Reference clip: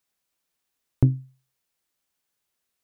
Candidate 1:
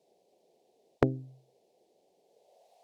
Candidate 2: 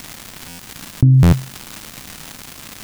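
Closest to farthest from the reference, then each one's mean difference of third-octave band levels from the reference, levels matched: 1, 2; 7.0, 9.5 dB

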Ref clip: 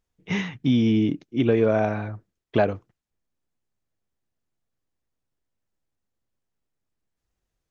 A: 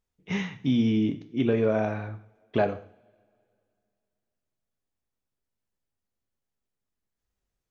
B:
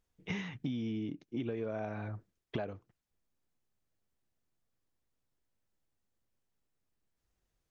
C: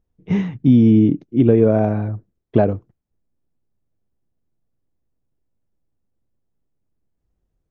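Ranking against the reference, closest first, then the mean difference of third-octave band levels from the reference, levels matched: A, B, C; 1.5, 3.0, 4.5 dB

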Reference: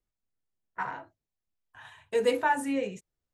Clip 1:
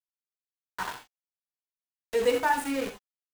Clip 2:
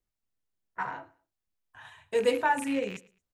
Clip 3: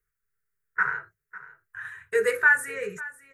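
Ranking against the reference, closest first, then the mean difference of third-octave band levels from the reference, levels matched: 2, 3, 1; 1.5, 6.0, 8.0 dB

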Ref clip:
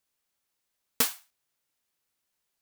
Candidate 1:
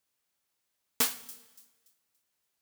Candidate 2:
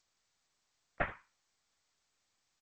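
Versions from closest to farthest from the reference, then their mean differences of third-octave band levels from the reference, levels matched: 1, 2; 6.0, 18.5 dB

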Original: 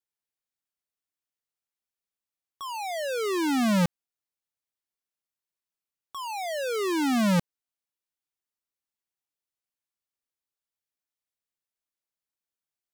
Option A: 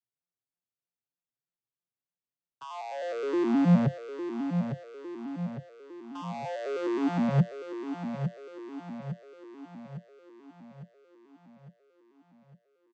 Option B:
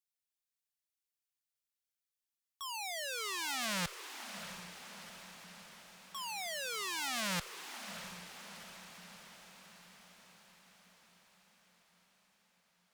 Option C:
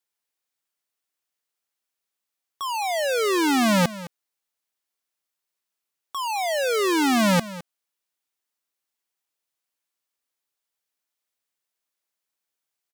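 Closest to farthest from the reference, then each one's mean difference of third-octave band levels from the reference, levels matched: C, B, A; 4.0, 9.5, 15.5 dB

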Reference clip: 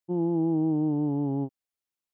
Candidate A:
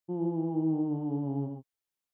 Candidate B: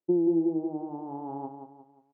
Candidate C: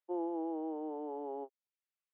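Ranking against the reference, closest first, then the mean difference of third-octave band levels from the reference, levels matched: A, B, C; 1.0, 3.5, 6.5 dB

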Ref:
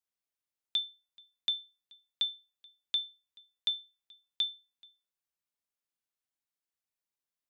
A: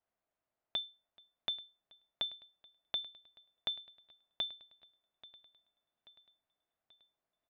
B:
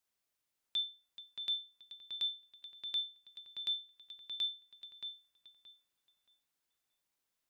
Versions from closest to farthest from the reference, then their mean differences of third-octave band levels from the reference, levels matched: B, A; 1.5, 4.0 dB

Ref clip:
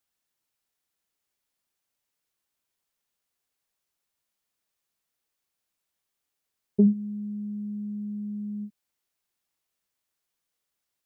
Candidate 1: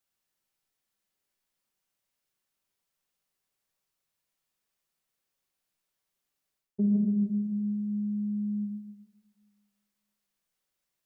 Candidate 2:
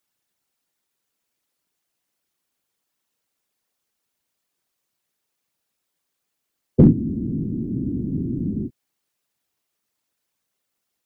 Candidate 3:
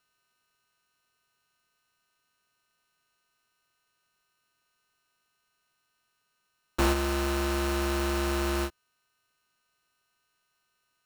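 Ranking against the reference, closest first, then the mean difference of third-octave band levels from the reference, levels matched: 1, 2, 3; 2.0, 8.5, 27.5 dB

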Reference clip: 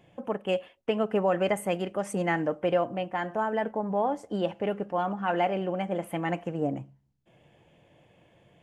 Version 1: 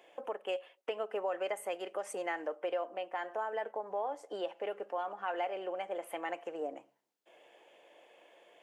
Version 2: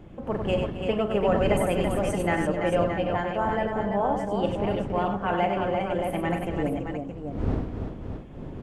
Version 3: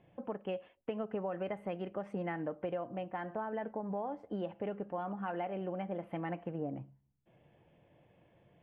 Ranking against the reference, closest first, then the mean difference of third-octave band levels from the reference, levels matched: 3, 1, 2; 3.0, 6.0, 8.0 dB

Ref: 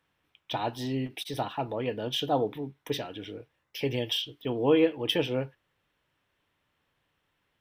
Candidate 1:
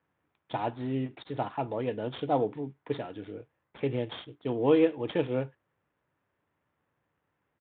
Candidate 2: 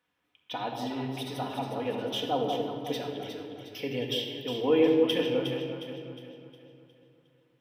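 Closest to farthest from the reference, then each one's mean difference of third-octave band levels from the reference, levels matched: 1, 2; 4.5, 7.5 dB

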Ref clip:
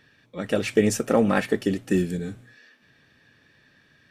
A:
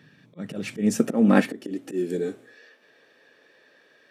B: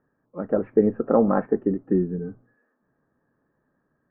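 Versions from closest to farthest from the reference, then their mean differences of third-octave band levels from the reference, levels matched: A, B; 6.0, 10.0 dB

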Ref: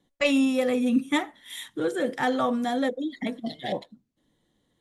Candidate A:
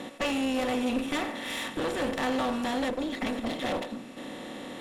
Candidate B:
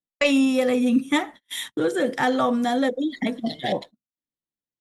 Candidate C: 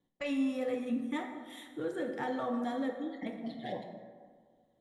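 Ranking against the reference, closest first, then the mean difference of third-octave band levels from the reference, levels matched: B, C, A; 1.0, 5.5, 11.5 dB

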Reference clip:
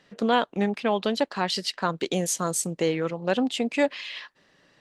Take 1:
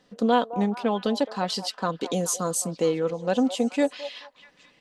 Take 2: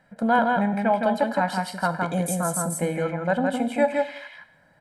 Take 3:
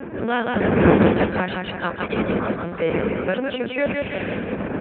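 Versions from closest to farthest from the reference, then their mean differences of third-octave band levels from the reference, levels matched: 1, 2, 3; 3.5, 7.5, 12.5 dB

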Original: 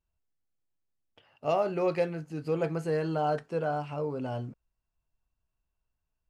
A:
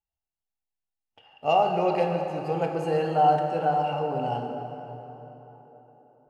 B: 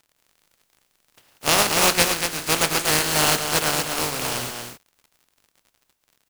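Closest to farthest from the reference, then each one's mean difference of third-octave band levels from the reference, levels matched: A, B; 5.0, 17.0 dB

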